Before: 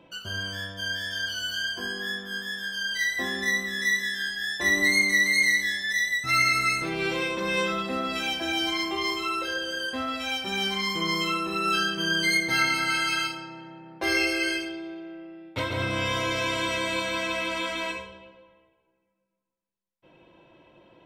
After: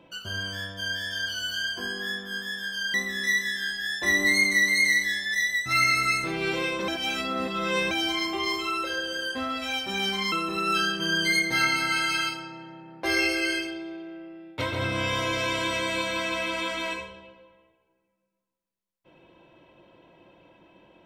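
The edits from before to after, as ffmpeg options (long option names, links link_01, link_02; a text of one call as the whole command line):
ffmpeg -i in.wav -filter_complex "[0:a]asplit=5[link_01][link_02][link_03][link_04][link_05];[link_01]atrim=end=2.942[link_06];[link_02]atrim=start=3.518:end=7.462[link_07];[link_03]atrim=start=7.458:end=8.492,asetpts=PTS-STARTPTS,areverse[link_08];[link_04]atrim=start=8.488:end=10.902[link_09];[link_05]atrim=start=11.298[link_10];[link_06][link_07]acrossfade=duration=0.004:curve1=hsin:curve2=hsin[link_11];[link_11][link_08]acrossfade=duration=0.004:curve1=hsin:curve2=hsin[link_12];[link_12][link_09]acrossfade=duration=0.004:curve1=hsin:curve2=hsin[link_13];[link_13][link_10]acrossfade=duration=0.004:curve1=hsin:curve2=hsin" out.wav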